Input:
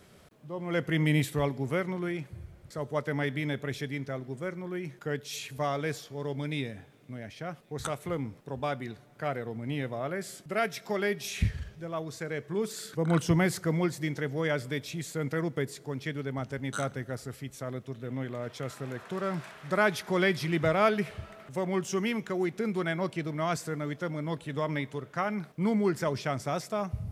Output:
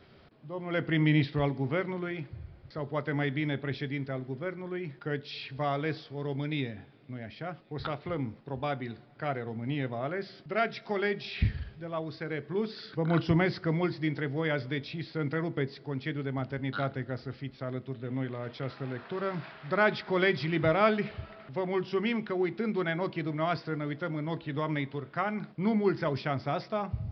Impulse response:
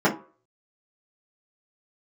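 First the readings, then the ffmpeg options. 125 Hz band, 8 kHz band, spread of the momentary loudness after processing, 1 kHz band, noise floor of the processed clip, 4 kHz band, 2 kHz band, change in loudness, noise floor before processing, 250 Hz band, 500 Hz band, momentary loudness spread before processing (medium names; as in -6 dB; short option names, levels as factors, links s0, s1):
0.0 dB, under -25 dB, 11 LU, 0.0 dB, -54 dBFS, -0.5 dB, 0.0 dB, 0.0 dB, -55 dBFS, 0.0 dB, -0.5 dB, 12 LU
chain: -filter_complex "[0:a]asplit=2[s0][s1];[1:a]atrim=start_sample=2205[s2];[s1][s2]afir=irnorm=-1:irlink=0,volume=0.0266[s3];[s0][s3]amix=inputs=2:normalize=0,aresample=11025,aresample=44100"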